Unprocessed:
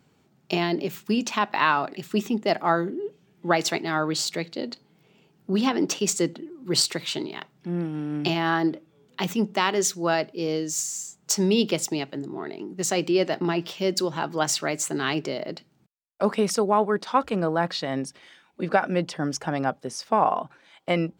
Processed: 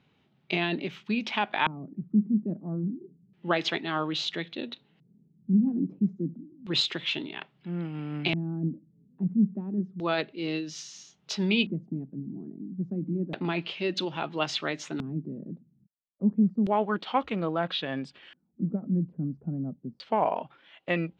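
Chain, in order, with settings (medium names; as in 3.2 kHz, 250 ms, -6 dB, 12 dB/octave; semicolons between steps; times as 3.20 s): formant shift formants -2 st; LFO low-pass square 0.3 Hz 210–3200 Hz; trim -5 dB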